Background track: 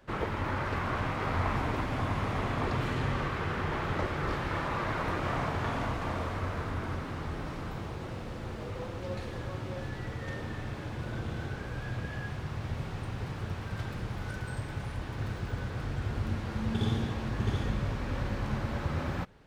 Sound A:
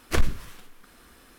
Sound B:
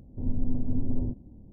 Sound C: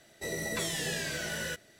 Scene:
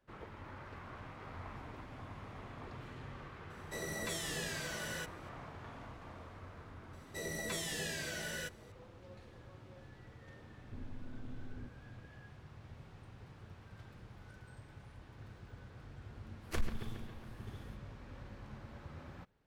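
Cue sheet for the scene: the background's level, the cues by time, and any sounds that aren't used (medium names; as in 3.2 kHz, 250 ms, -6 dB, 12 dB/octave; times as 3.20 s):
background track -17.5 dB
3.50 s: add C -6.5 dB
6.93 s: add C -6 dB
10.55 s: add B -12 dB + compression, threshold -29 dBFS
16.40 s: add A -14 dB, fades 0.05 s + bucket-brigade echo 137 ms, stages 4096, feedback 65%, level -10.5 dB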